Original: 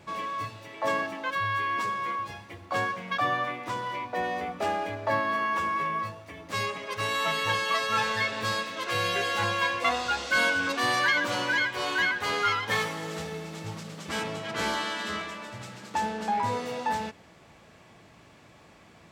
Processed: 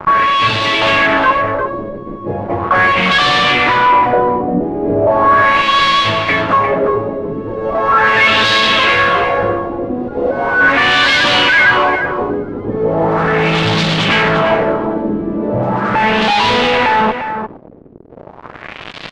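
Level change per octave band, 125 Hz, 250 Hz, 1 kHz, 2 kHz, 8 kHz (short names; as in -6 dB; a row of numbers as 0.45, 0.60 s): +17.5, +19.5, +16.0, +15.5, +6.5 dB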